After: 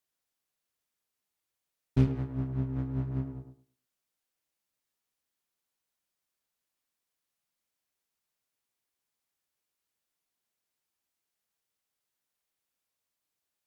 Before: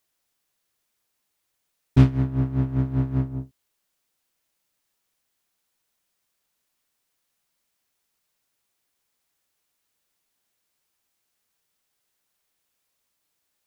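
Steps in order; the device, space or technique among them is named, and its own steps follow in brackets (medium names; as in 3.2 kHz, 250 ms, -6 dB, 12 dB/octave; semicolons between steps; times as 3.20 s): rockabilly slapback (valve stage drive 8 dB, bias 0.7; tape echo 107 ms, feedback 25%, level -6 dB, low-pass 1.3 kHz); trim -6 dB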